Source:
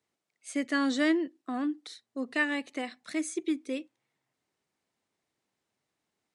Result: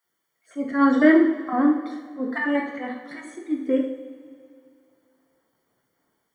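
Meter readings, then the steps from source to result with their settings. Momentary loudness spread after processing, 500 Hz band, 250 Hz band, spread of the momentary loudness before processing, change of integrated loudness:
21 LU, +10.5 dB, +10.0 dB, 12 LU, +9.5 dB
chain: random holes in the spectrogram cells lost 23%; level rider gain up to 11 dB; added noise violet -54 dBFS; Savitzky-Golay filter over 41 samples; slow attack 100 ms; two-slope reverb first 0.6 s, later 2.5 s, from -15 dB, DRR -1 dB; trim -1 dB

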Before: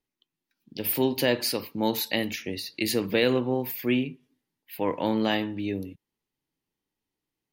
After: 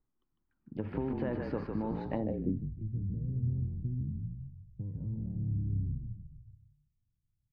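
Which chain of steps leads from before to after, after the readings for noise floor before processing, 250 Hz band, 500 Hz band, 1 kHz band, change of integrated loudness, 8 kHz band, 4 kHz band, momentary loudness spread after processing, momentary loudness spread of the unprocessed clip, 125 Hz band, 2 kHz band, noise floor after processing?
under -85 dBFS, -8.5 dB, -13.0 dB, -13.0 dB, -9.0 dB, under -40 dB, under -30 dB, 12 LU, 10 LU, +4.5 dB, under -20 dB, -81 dBFS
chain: RIAA curve playback; peak limiter -13.5 dBFS, peak gain reduction 7 dB; compression, threshold -25 dBFS, peak gain reduction 8 dB; frequency-shifting echo 152 ms, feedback 50%, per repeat -40 Hz, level -4 dB; painted sound fall, 4.86–5.31 s, 490–2400 Hz -42 dBFS; low-pass sweep 1.3 kHz -> 120 Hz, 2.08–2.71 s; trim -6 dB

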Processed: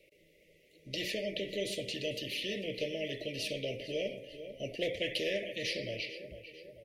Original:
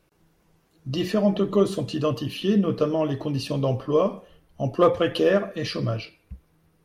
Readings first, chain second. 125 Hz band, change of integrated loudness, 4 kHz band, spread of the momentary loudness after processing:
-19.5 dB, -12.5 dB, -2.0 dB, 9 LU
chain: Chebyshev band-stop 600–2000 Hz, order 5; three-band isolator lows -23 dB, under 550 Hz, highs -16 dB, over 2.6 kHz; feedback delay 446 ms, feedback 39%, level -20.5 dB; spectrum-flattening compressor 2:1; trim -3.5 dB

